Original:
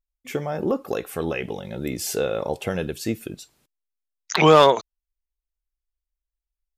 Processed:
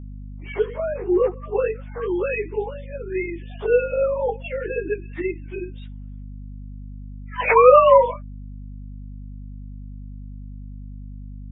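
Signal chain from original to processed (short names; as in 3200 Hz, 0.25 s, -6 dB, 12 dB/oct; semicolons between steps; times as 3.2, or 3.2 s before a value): sine-wave speech; plain phase-vocoder stretch 1.7×; hum 50 Hz, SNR 13 dB; gain +4.5 dB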